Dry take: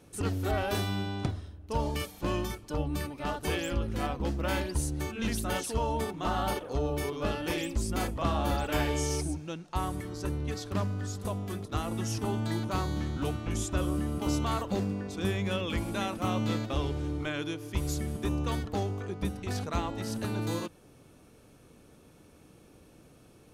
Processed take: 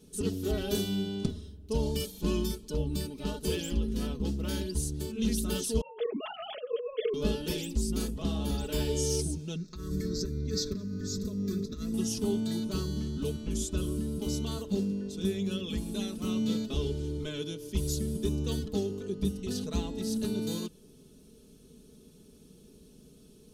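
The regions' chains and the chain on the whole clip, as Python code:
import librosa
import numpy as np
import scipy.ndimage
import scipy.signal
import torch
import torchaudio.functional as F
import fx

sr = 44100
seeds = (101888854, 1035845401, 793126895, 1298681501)

y = fx.chain(x, sr, fx.sine_speech(),
    fx.over_compress(threshold_db=-32.0, ratio=-0.5), at=(5.81, 7.14))
y = fx.chain(y, sr, fx.over_compress(threshold_db=-36.0, ratio=-1.0),
    fx.fixed_phaser(hz=3000.0, stages=6), at=(9.56, 11.94))
y = fx.band_shelf(y, sr, hz=1200.0, db=-14.0, octaves=2.3)
y = y + 0.76 * np.pad(y, (int(4.7 * sr / 1000.0), 0))[:len(y)]
y = fx.rider(y, sr, range_db=10, speed_s=2.0)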